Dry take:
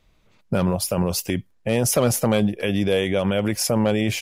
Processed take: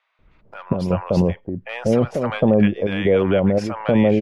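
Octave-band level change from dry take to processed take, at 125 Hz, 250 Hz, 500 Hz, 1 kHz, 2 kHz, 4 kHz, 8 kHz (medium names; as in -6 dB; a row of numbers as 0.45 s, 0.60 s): +2.0 dB, +3.5 dB, +3.5 dB, +1.5 dB, 0.0 dB, -7.5 dB, under -20 dB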